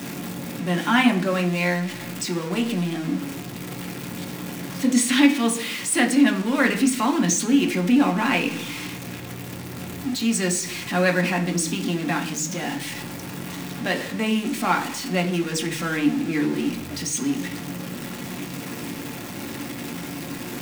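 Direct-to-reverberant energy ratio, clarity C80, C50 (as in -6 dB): 2.0 dB, 16.5 dB, 12.5 dB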